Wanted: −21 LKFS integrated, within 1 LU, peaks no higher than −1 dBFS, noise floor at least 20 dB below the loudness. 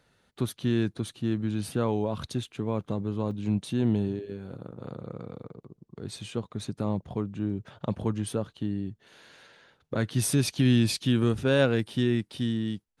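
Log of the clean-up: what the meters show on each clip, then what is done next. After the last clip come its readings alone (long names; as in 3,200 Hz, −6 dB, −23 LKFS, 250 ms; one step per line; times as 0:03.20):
number of dropouts 1; longest dropout 3.7 ms; integrated loudness −29.0 LKFS; sample peak −10.0 dBFS; target loudness −21.0 LKFS
→ repair the gap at 0:03.31, 3.7 ms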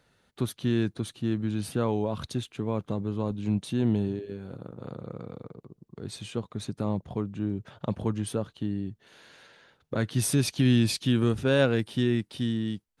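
number of dropouts 0; integrated loudness −29.0 LKFS; sample peak −10.0 dBFS; target loudness −21.0 LKFS
→ level +8 dB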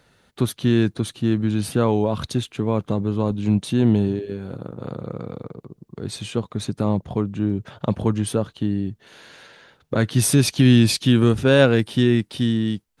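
integrated loudness −21.0 LKFS; sample peak −2.0 dBFS; background noise floor −64 dBFS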